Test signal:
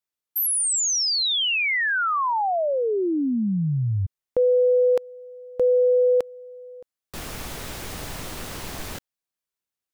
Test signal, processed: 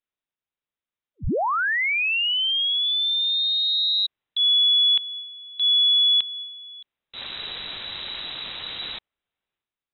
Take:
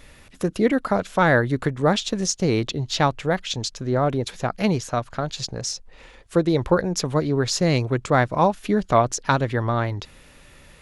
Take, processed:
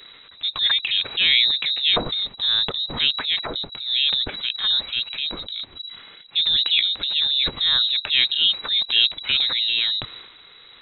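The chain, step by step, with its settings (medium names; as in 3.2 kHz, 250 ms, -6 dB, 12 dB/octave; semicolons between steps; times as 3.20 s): transient shaper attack -5 dB, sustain +8 dB; frequency inversion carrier 3.9 kHz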